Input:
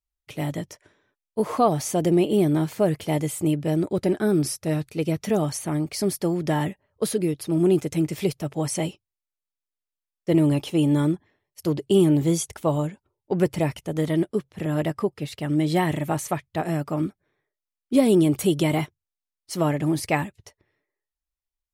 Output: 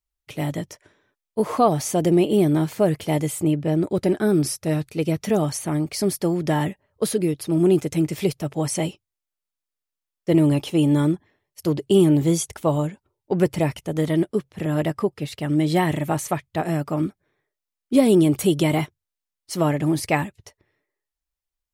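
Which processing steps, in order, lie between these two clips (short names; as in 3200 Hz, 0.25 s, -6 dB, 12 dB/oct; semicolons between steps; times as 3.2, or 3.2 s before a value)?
3.43–3.83 high shelf 4400 Hz -9 dB; gain +2 dB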